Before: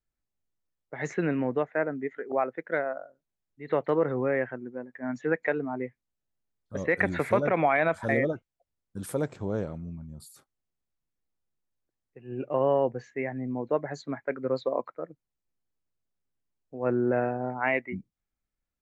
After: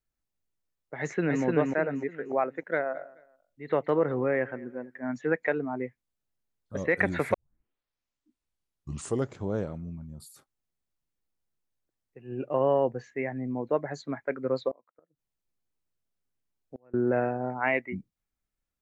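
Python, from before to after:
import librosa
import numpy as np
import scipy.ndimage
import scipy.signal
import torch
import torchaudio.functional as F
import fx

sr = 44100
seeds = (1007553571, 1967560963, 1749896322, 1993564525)

y = fx.echo_throw(x, sr, start_s=0.99, length_s=0.44, ms=300, feedback_pct=35, wet_db=-2.0)
y = fx.echo_feedback(y, sr, ms=215, feedback_pct=30, wet_db=-21.5, at=(2.75, 4.97), fade=0.02)
y = fx.notch(y, sr, hz=2200.0, q=12.0, at=(12.32, 13.04))
y = fx.gate_flip(y, sr, shuts_db=-29.0, range_db=-32, at=(14.71, 16.94))
y = fx.edit(y, sr, fx.tape_start(start_s=7.34, length_s=2.12), tone=tone)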